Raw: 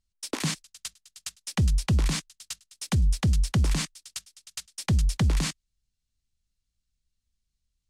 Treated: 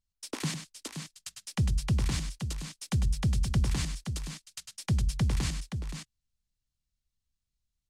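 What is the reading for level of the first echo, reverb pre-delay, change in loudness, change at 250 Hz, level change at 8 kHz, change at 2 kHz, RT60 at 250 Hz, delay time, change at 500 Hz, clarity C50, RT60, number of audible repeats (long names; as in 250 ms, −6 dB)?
−8.5 dB, no reverb audible, −5.0 dB, −3.5 dB, −5.0 dB, −4.5 dB, no reverb audible, 100 ms, −4.5 dB, no reverb audible, no reverb audible, 2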